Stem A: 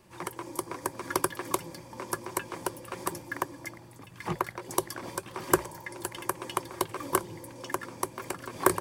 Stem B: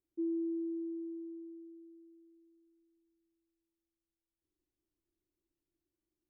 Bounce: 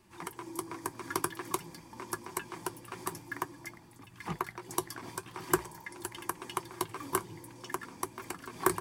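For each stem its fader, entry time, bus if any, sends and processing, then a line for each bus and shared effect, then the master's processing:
+0.5 dB, 0.00 s, no send, peaking EQ 550 Hz -14.5 dB 0.27 oct; flange 0.49 Hz, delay 3.1 ms, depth 4.6 ms, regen -64%
-8.5 dB, 0.00 s, no send, tremolo of two beating tones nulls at 1.6 Hz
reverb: none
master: none

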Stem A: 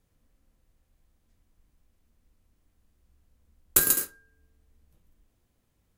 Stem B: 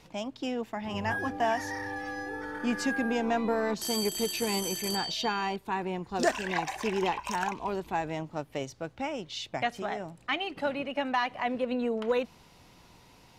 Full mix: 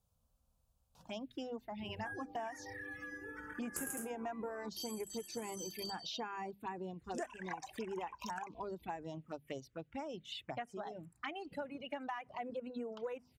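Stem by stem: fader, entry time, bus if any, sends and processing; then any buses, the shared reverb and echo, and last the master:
-4.5 dB, 0.00 s, no send, peak limiter -10 dBFS, peak gain reduction 7 dB
-3.5 dB, 0.95 s, no send, hum notches 50/100/150/200/250 Hz; reverb removal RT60 1.5 s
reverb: none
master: high-pass 43 Hz; touch-sensitive phaser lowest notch 330 Hz, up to 4.2 kHz, full sweep at -31.5 dBFS; compression 4:1, threshold -40 dBFS, peak gain reduction 13.5 dB

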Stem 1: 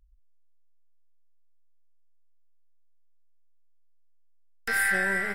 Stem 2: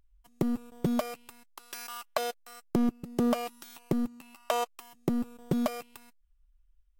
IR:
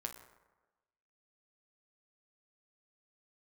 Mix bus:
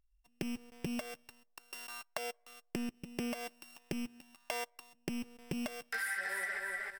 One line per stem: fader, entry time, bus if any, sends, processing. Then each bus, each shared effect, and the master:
-3.5 dB, 1.25 s, no send, echo send -5.5 dB, high-pass 570 Hz 12 dB/octave; detune thickener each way 14 cents
-9.0 dB, 0.00 s, send -21.5 dB, no echo send, sorted samples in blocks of 16 samples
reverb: on, RT60 1.2 s, pre-delay 8 ms
echo: feedback delay 309 ms, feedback 24%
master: waveshaping leveller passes 1; compression 6:1, threshold -35 dBFS, peak gain reduction 9 dB

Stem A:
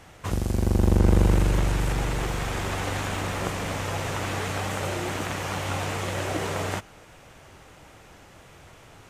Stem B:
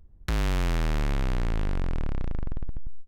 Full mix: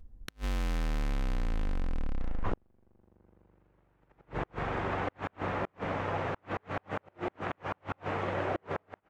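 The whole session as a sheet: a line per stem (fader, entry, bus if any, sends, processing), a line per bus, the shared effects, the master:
-0.5 dB, 2.20 s, no send, low-pass 1.7 kHz 12 dB/octave; bass shelf 130 Hz -11 dB
-1.5 dB, 0.00 s, no send, compression, threshold -30 dBFS, peak gain reduction 6.5 dB; comb 3.9 ms, depth 49%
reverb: none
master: inverted gate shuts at -21 dBFS, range -39 dB

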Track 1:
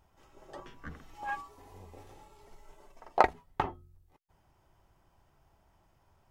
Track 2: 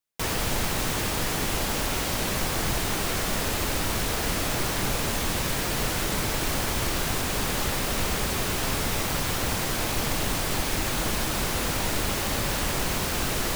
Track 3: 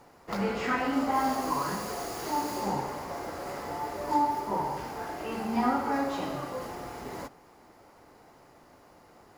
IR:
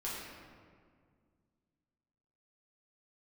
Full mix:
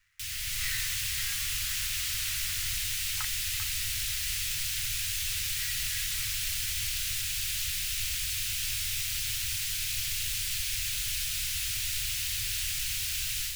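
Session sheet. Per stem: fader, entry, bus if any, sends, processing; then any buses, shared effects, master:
-13.5 dB, 0.00 s, no send, none
-14.5 dB, 0.00 s, no send, FFT filter 370 Hz 0 dB, 1.3 kHz -9 dB, 2.6 kHz +9 dB
+0.5 dB, 0.00 s, no send, elliptic high-pass 1.9 kHz; sliding maximum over 9 samples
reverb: none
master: elliptic band-stop 110–1400 Hz, stop band 70 dB; level rider gain up to 5 dB

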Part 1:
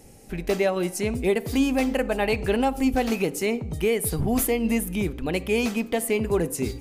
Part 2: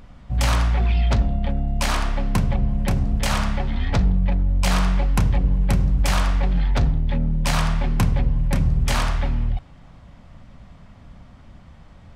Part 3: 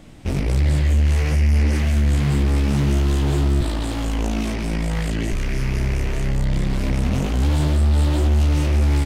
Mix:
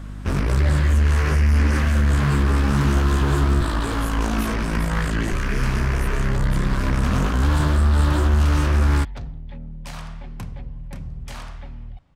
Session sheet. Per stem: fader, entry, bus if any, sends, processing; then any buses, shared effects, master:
-14.0 dB, 0.00 s, no send, none
-14.0 dB, 2.40 s, no send, none
-0.5 dB, 0.00 s, no send, high-order bell 1.3 kHz +10 dB 1 oct; hum 50 Hz, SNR 15 dB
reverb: none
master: none

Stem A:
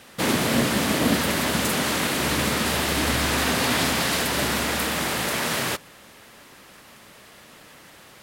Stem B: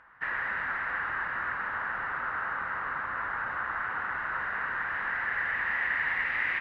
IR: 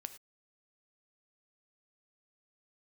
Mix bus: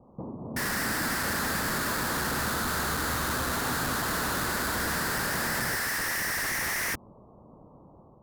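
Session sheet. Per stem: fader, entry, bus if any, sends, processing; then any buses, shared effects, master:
-7.0 dB, 0.00 s, no send, steep low-pass 1.1 kHz 72 dB/octave; bass shelf 290 Hz +9 dB; compression 16:1, threshold -29 dBFS, peak gain reduction 18 dB
-2.0 dB, 0.35 s, no send, Schmitt trigger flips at -38.5 dBFS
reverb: none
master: peaking EQ 13 kHz +7.5 dB 1.3 oct; level rider gain up to 3 dB

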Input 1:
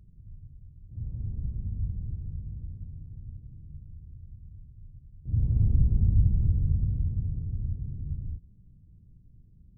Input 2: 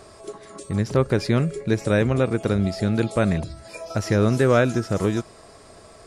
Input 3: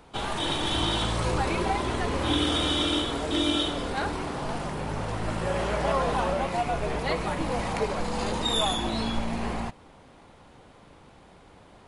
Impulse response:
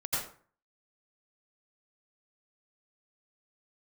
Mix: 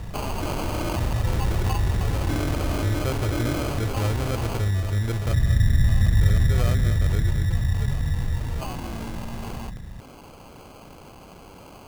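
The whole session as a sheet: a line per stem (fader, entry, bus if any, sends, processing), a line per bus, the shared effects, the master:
+1.0 dB, 0.00 s, no send, echo send -6.5 dB, none
-18.0 dB, 2.10 s, no send, echo send -10.5 dB, resonant low shelf 120 Hz +10 dB, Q 3
4.53 s -12.5 dB -> 4.85 s -23 dB, 0.00 s, no send, no echo send, none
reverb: none
echo: delay 230 ms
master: sample-and-hold 24×; level flattener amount 50%

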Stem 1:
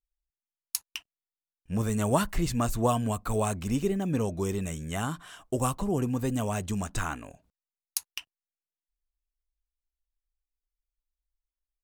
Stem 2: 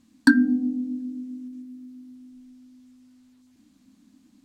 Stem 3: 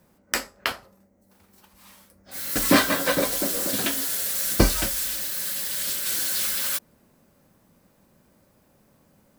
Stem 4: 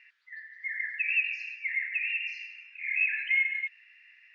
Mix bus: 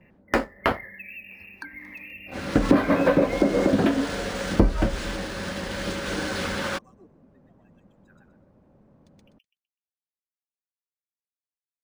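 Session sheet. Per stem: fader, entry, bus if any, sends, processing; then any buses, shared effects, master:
-17.0 dB, 1.10 s, bus B, no send, echo send -4.5 dB, expander on every frequency bin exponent 3; Bessel high-pass 510 Hz, order 8
-6.0 dB, 1.35 s, bus A, no send, no echo send, steep high-pass 330 Hz 72 dB/octave
0.0 dB, 0.00 s, bus B, no send, no echo send, waveshaping leveller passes 2
-3.0 dB, 0.00 s, bus A, no send, no echo send, gate with hold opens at -50 dBFS
bus A: 0.0 dB, spectral gate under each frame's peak -30 dB strong; compression, threshold -35 dBFS, peak gain reduction 11.5 dB
bus B: 0.0 dB, tilt shelf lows +9 dB, about 1.5 kHz; compression 5:1, threshold -16 dBFS, peak gain reduction 14.5 dB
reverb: none
echo: feedback delay 125 ms, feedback 24%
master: treble shelf 4.4 kHz -11 dB; decimation joined by straight lines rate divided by 3×

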